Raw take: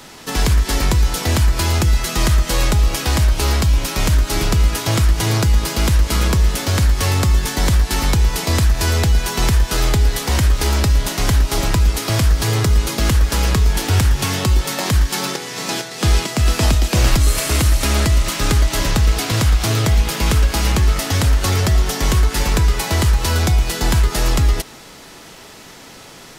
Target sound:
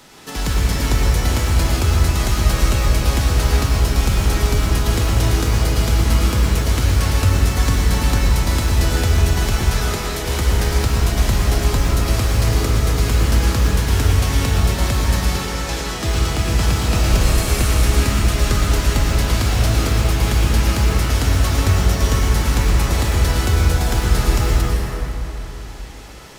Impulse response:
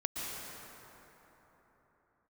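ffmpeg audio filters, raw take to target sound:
-filter_complex "[0:a]asettb=1/sr,asplit=3[a][b][c];[a]atrim=end=9.584[d];[b]atrim=start=9.58:end=10.27,asetpts=PTS-STARTPTS,afade=t=in:d=0.004:c=qsin,afade=t=out:st=0.686:d=0.004:c=qsin,highpass=280[e];[c]atrim=start=10.266[f];[d][e]acrossfade=d=0.004:c1=hsin:c2=qsin[g];[g][f]acrossfade=d=0.004:c1=qsin:c2=hsin,acrusher=bits=7:mode=log:mix=0:aa=0.000001[h];[1:a]atrim=start_sample=2205,asetrate=52920,aresample=44100[i];[h][i]afir=irnorm=-1:irlink=0,volume=-3.5dB"

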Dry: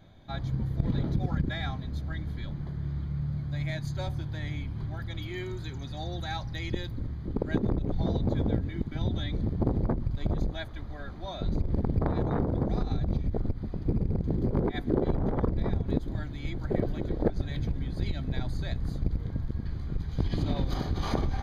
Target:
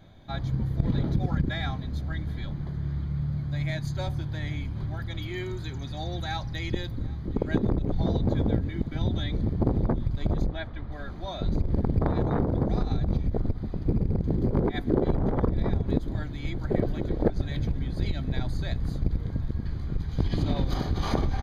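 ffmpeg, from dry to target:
-filter_complex "[0:a]asettb=1/sr,asplit=3[a][b][c];[a]atrim=end=10.464[d];[b]atrim=start=10.46:end=10.92,asetpts=PTS-STARTPTS,afade=t=in:d=0.004:c=qsin,afade=t=out:st=0.456:d=0.004:c=qsin,lowpass=3.2k[e];[c]atrim=start=10.916[f];[d][e]acrossfade=d=0.004:c1=hsin:c2=qsin[g];[g][f]acrossfade=d=0.004:c1=qsin:c2=hsin,asplit=2[h][i];[i]aecho=0:1:777:0.0631[j];[h][j]amix=inputs=2:normalize=0,volume=2.5dB"

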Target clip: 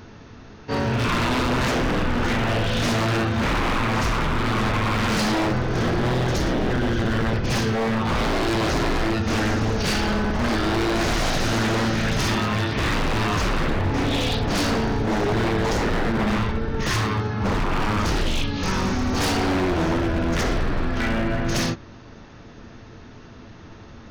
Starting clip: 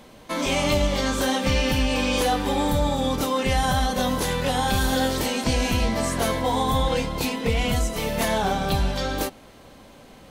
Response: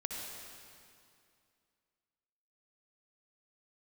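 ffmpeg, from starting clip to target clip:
-af "asetrate=18846,aresample=44100,aeval=exprs='0.0841*(abs(mod(val(0)/0.0841+3,4)-2)-1)':c=same,volume=5dB"

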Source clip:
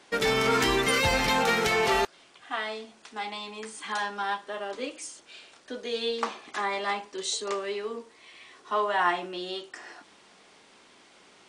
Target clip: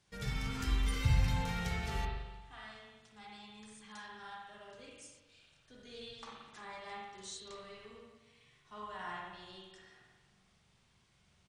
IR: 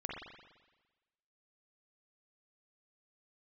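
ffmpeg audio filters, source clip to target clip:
-filter_complex "[0:a]firequalizer=gain_entry='entry(120,0);entry(270,-27);entry(5500,-17)':delay=0.05:min_phase=1[a];[1:a]atrim=start_sample=2205[b];[a][b]afir=irnorm=-1:irlink=0,volume=6dB"

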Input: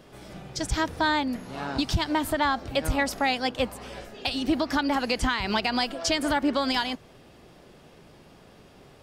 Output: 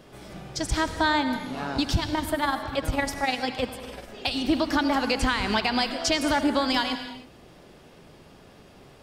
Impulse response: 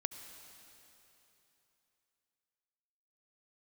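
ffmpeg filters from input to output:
-filter_complex "[0:a]asettb=1/sr,asplit=3[a][b][c];[a]atrim=end=1.994[d];[b]atrim=start=1.99:end=4.09,asetpts=PTS-STARTPTS,afade=t=in:d=0.004:c=qsin,afade=t=out:st=2.096:d=0.004:c=qsin,tremolo=f=20:d=0.61[e];[c]atrim=start=4.086[f];[d][e]acrossfade=d=0.004:c1=hsin:c2=qsin[g];[g][f]acrossfade=d=0.004:c1=qsin:c2=hsin[h];[1:a]atrim=start_sample=2205,afade=t=out:st=0.38:d=0.01,atrim=end_sample=17199[i];[h][i]afir=irnorm=-1:irlink=0,volume=2dB"

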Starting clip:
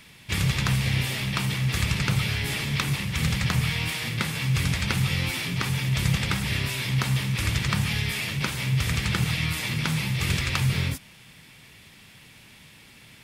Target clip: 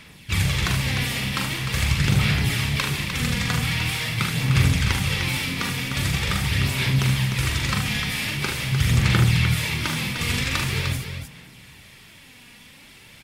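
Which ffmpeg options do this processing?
-af "aphaser=in_gain=1:out_gain=1:delay=4.2:decay=0.47:speed=0.44:type=sinusoidal,aecho=1:1:42|75|302:0.531|0.398|0.447"

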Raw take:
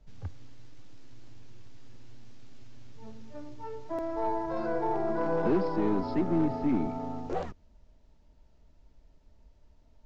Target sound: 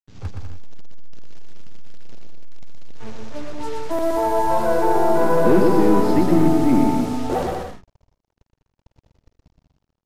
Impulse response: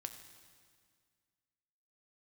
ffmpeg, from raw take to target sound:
-filter_complex "[0:a]dynaudnorm=f=140:g=3:m=10dB,acrusher=bits=5:mix=0:aa=0.5,asplit=2[a][b];[b]aecho=0:1:120|198|248.7|281.7|303.1:0.631|0.398|0.251|0.158|0.1[c];[a][c]amix=inputs=2:normalize=0,aresample=32000,aresample=44100"

